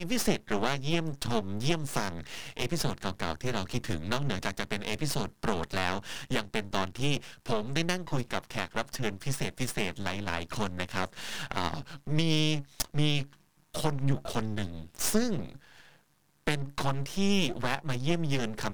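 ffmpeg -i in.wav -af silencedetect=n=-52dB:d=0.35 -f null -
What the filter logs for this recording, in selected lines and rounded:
silence_start: 15.98
silence_end: 16.47 | silence_duration: 0.49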